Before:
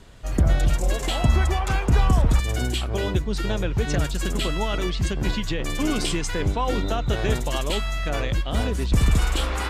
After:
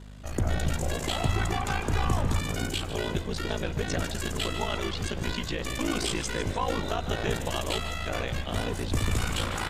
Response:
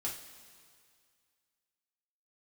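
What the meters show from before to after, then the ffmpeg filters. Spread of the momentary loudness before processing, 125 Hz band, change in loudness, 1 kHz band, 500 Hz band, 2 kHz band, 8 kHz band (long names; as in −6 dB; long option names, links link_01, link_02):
5 LU, −7.0 dB, −6.0 dB, −3.0 dB, −4.0 dB, −3.0 dB, −2.5 dB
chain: -filter_complex "[0:a]aeval=exprs='val(0)*sin(2*PI*28*n/s)':channel_layout=same,aeval=exprs='val(0)+0.0126*(sin(2*PI*50*n/s)+sin(2*PI*2*50*n/s)/2+sin(2*PI*3*50*n/s)/3+sin(2*PI*4*50*n/s)/4+sin(2*PI*5*50*n/s)/5)':channel_layout=same,lowshelf=frequency=280:gain=-6.5,volume=16.5dB,asoftclip=hard,volume=-16.5dB,asplit=2[link_01][link_02];[link_02]asplit=6[link_03][link_04][link_05][link_06][link_07][link_08];[link_03]adelay=151,afreqshift=79,volume=-12dB[link_09];[link_04]adelay=302,afreqshift=158,volume=-17.2dB[link_10];[link_05]adelay=453,afreqshift=237,volume=-22.4dB[link_11];[link_06]adelay=604,afreqshift=316,volume=-27.6dB[link_12];[link_07]adelay=755,afreqshift=395,volume=-32.8dB[link_13];[link_08]adelay=906,afreqshift=474,volume=-38dB[link_14];[link_09][link_10][link_11][link_12][link_13][link_14]amix=inputs=6:normalize=0[link_15];[link_01][link_15]amix=inputs=2:normalize=0"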